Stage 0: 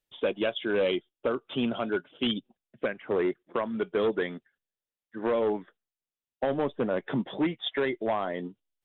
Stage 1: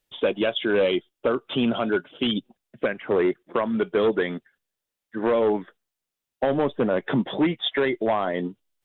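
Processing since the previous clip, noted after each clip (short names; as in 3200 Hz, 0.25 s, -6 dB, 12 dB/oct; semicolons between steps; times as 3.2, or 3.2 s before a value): limiter -23 dBFS, peak gain reduction 5.5 dB; gain +8 dB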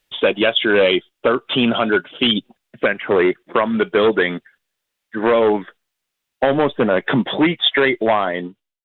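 ending faded out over 0.73 s; bell 2300 Hz +6.5 dB 2.5 oct; gain +5 dB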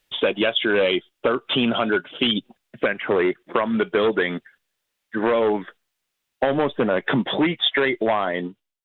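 compressor 2:1, threshold -20 dBFS, peak gain reduction 5.5 dB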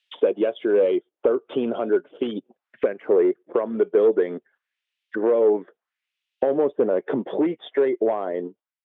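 in parallel at -10 dB: crossover distortion -35 dBFS; on the sum: auto-wah 430–3100 Hz, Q 2.2, down, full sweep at -24.5 dBFS; gain +1.5 dB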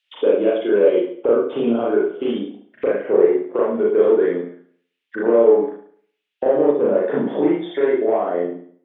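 reverb RT60 0.55 s, pre-delay 34 ms, DRR -5.5 dB; gain -2 dB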